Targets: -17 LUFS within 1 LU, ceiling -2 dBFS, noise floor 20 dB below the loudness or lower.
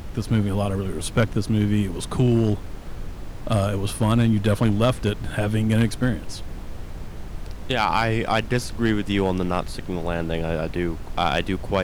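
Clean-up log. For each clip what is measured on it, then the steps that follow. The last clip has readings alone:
clipped samples 0.3%; clipping level -10.5 dBFS; noise floor -35 dBFS; noise floor target -43 dBFS; loudness -23.0 LUFS; peak level -10.5 dBFS; loudness target -17.0 LUFS
-> clip repair -10.5 dBFS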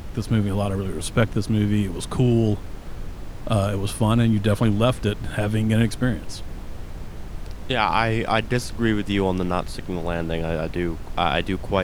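clipped samples 0.0%; noise floor -35 dBFS; noise floor target -43 dBFS
-> noise print and reduce 8 dB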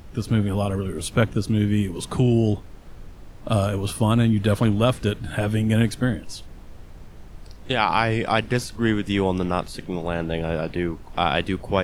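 noise floor -41 dBFS; noise floor target -43 dBFS
-> noise print and reduce 6 dB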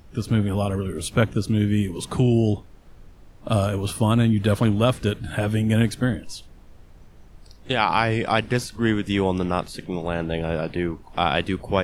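noise floor -47 dBFS; loudness -23.0 LUFS; peak level -4.5 dBFS; loudness target -17.0 LUFS
-> trim +6 dB; peak limiter -2 dBFS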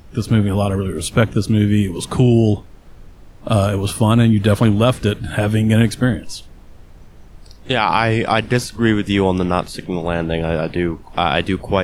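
loudness -17.5 LUFS; peak level -2.0 dBFS; noise floor -41 dBFS

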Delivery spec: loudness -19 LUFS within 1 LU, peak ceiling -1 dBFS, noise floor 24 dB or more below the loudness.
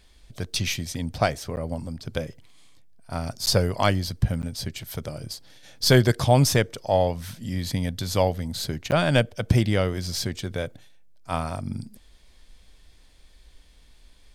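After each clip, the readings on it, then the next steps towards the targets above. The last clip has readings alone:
dropouts 4; longest dropout 9.7 ms; loudness -25.0 LUFS; peak level -4.0 dBFS; loudness target -19.0 LUFS
-> interpolate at 1.56/3.46/4.42/8.91 s, 9.7 ms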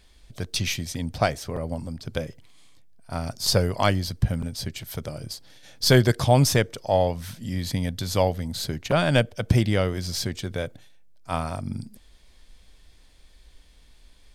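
dropouts 0; loudness -25.0 LUFS; peak level -4.0 dBFS; loudness target -19.0 LUFS
-> trim +6 dB; peak limiter -1 dBFS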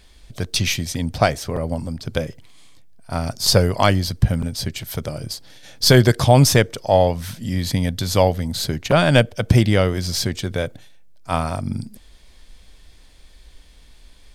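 loudness -19.5 LUFS; peak level -1.0 dBFS; noise floor -48 dBFS

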